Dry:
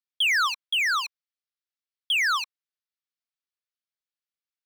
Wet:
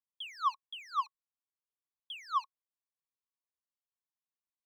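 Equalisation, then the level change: EQ curve 670 Hz 0 dB, 1100 Hz +11 dB, 1600 Hz -28 dB, 3300 Hz -9 dB, 5000 Hz -13 dB, 9100 Hz -20 dB; -8.5 dB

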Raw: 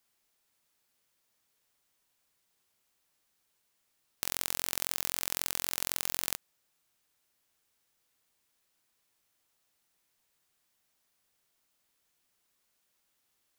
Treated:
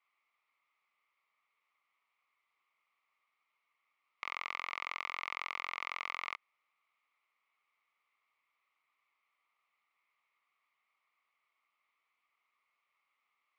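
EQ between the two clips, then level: double band-pass 1600 Hz, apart 0.85 oct; air absorption 170 m; +11.0 dB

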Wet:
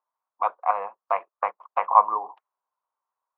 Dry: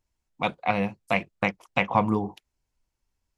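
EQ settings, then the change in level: HPF 550 Hz 24 dB/oct; synth low-pass 1100 Hz, resonance Q 5.4; air absorption 68 m; -2.5 dB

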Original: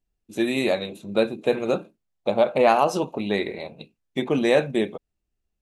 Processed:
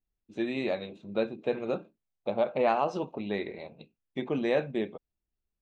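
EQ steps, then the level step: LPF 9000 Hz 12 dB/oct; air absorption 150 m; -7.5 dB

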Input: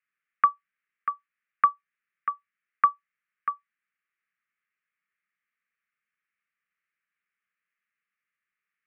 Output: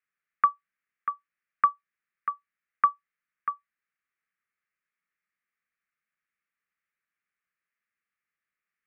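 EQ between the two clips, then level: high shelf 2500 Hz -7.5 dB; 0.0 dB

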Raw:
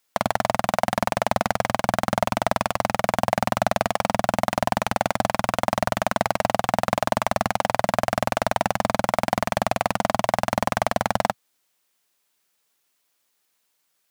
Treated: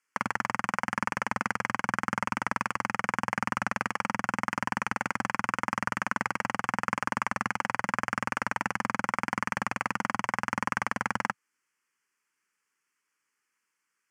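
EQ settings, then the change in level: HPF 380 Hz 6 dB/oct; LPF 6000 Hz 12 dB/oct; fixed phaser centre 1600 Hz, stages 4; 0.0 dB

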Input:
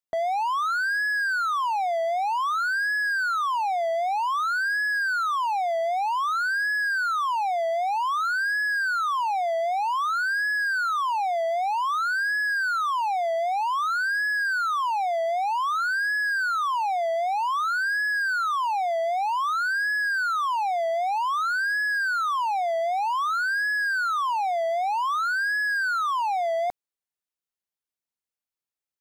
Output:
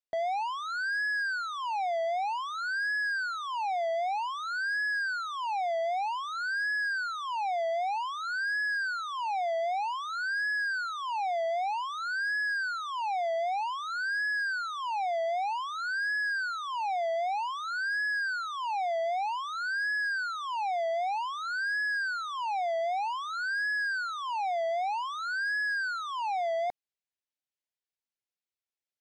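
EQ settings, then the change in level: air absorption 83 m; low shelf 480 Hz -8 dB; bell 1200 Hz -10.5 dB 0.68 oct; 0.0 dB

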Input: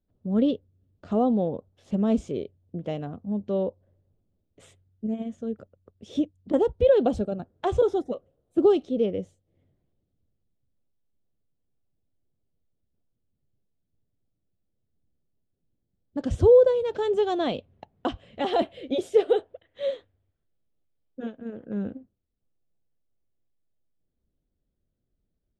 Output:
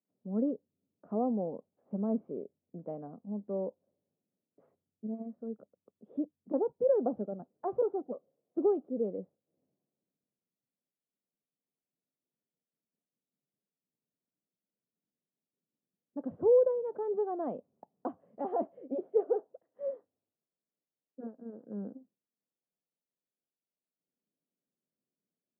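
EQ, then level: HPF 180 Hz 24 dB/oct; LPF 1100 Hz 24 dB/oct; bell 340 Hz -3 dB 0.22 oct; -8.0 dB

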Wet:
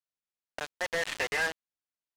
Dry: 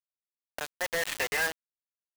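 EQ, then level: air absorption 53 m; 0.0 dB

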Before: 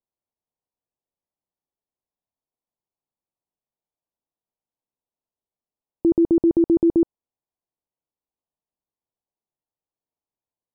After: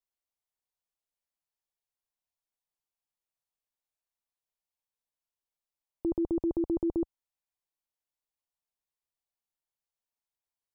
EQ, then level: bell 240 Hz -13.5 dB 2.9 oct; 0.0 dB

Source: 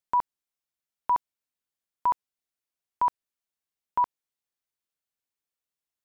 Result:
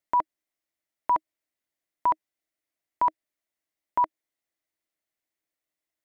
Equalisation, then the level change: thirty-one-band EQ 315 Hz +11 dB, 630 Hz +10 dB, 2000 Hz +9 dB; 0.0 dB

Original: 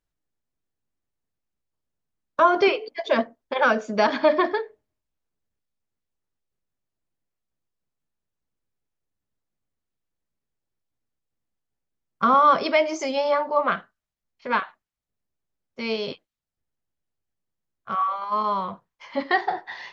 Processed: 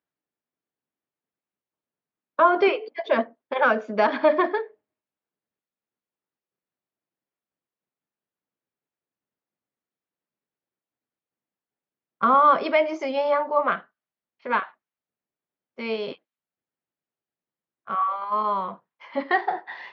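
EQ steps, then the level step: HPF 210 Hz 12 dB/oct; LPF 2800 Hz 12 dB/oct; 0.0 dB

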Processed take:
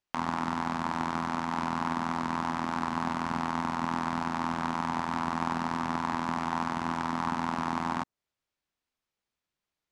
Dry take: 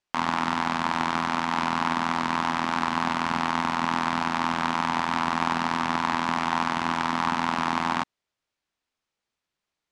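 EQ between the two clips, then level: low shelf 240 Hz +4 dB; dynamic EQ 3000 Hz, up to -7 dB, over -42 dBFS, Q 0.74; -4.5 dB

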